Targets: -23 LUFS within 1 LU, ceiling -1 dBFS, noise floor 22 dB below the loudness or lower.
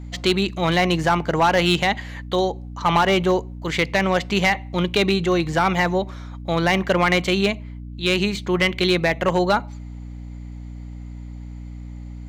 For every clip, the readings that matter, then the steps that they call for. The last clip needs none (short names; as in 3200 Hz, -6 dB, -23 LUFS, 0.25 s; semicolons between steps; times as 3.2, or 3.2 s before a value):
clipped 0.4%; flat tops at -10.5 dBFS; hum 60 Hz; harmonics up to 300 Hz; hum level -32 dBFS; loudness -20.5 LUFS; peak -10.5 dBFS; loudness target -23.0 LUFS
-> clip repair -10.5 dBFS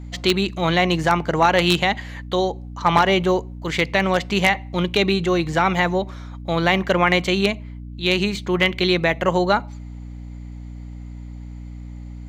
clipped 0.0%; hum 60 Hz; harmonics up to 300 Hz; hum level -32 dBFS
-> notches 60/120/180/240/300 Hz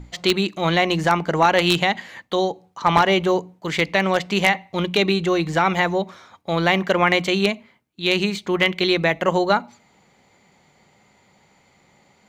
hum none; loudness -20.0 LUFS; peak -1.0 dBFS; loudness target -23.0 LUFS
-> gain -3 dB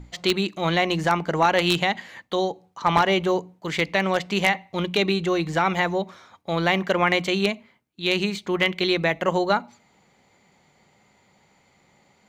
loudness -23.0 LUFS; peak -4.0 dBFS; noise floor -62 dBFS